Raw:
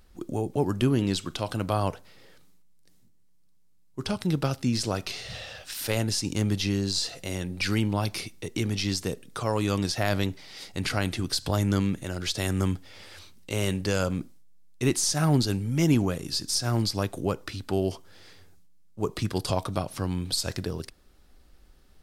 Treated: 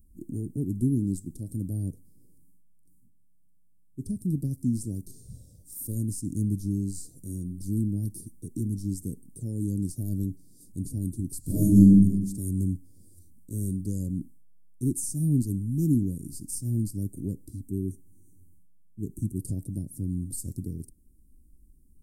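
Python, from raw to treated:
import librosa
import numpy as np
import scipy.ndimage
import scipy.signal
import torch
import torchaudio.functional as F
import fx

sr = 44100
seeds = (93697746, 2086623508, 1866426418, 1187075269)

y = fx.reverb_throw(x, sr, start_s=11.4, length_s=0.53, rt60_s=0.88, drr_db=-11.0)
y = fx.brickwall_bandstop(y, sr, low_hz=440.0, high_hz=5600.0, at=(17.63, 19.39))
y = scipy.signal.sosfilt(scipy.signal.ellip(3, 1.0, 70, [280.0, 8900.0], 'bandstop', fs=sr, output='sos'), y)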